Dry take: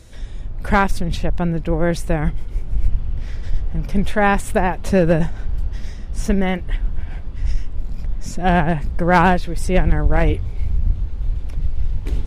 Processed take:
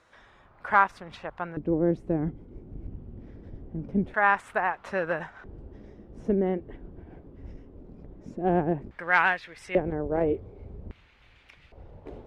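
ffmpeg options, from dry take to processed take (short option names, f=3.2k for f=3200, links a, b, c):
-af "asetnsamples=n=441:p=0,asendcmd='1.57 bandpass f 300;4.14 bandpass f 1300;5.44 bandpass f 360;8.91 bandpass f 1900;9.75 bandpass f 430;10.91 bandpass f 2300;11.72 bandpass f 590',bandpass=f=1.2k:t=q:w=1.9:csg=0"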